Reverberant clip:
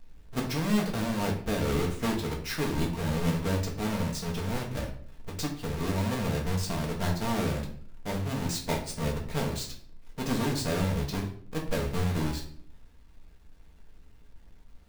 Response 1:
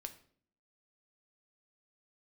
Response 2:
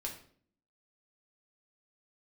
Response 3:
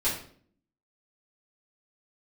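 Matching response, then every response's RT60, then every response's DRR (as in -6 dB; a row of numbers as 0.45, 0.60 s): 2; 0.55, 0.55, 0.55 s; 6.5, -1.0, -11.0 dB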